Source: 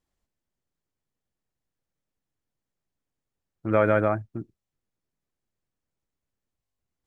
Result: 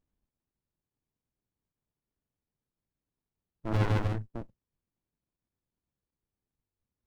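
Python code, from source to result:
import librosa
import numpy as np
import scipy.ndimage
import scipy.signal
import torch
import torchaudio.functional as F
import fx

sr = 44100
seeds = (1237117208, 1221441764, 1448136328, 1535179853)

y = fx.running_max(x, sr, window=65)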